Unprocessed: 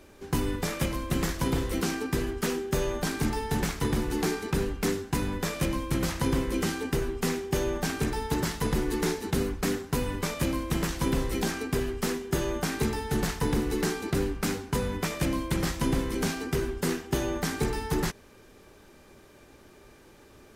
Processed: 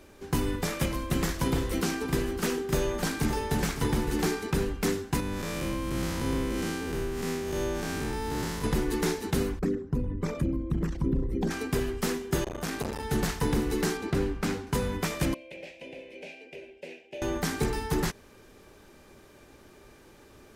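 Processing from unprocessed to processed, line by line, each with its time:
1.46–4.33 s: delay 562 ms -10.5 dB
5.20–8.64 s: spectral blur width 172 ms
9.59–11.51 s: resonances exaggerated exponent 2
12.44–13.03 s: transformer saturation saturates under 620 Hz
13.97–14.67 s: low-pass 4 kHz 6 dB/octave
15.34–17.22 s: two resonant band-passes 1.2 kHz, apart 2.1 oct

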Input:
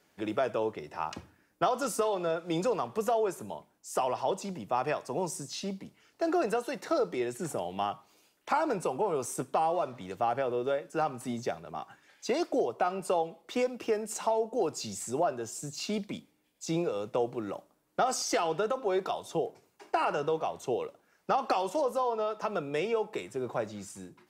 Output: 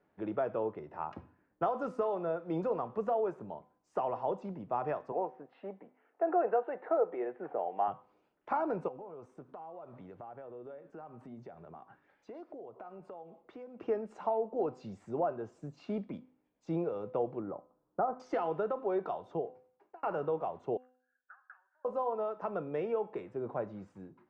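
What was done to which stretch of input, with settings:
5.12–7.88 s: cabinet simulation 380–2700 Hz, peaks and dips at 480 Hz +5 dB, 750 Hz +7 dB, 1.7 kHz +3 dB
8.88–13.81 s: compression 4:1, threshold -43 dBFS
17.40–18.20 s: low-pass 1.4 kHz 24 dB/octave
19.28–20.03 s: fade out
20.77–21.85 s: Butterworth band-pass 1.6 kHz, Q 6.8
whole clip: low-pass 1.3 kHz 12 dB/octave; de-hum 253.4 Hz, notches 30; trim -3 dB

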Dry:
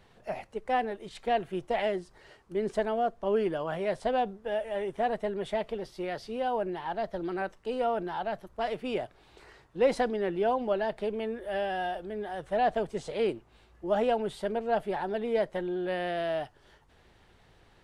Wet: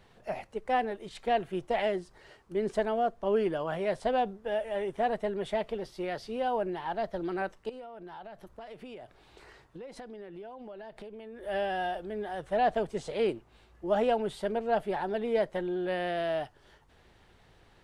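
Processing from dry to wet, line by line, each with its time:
7.69–11.43 s: compression 12:1, threshold -41 dBFS

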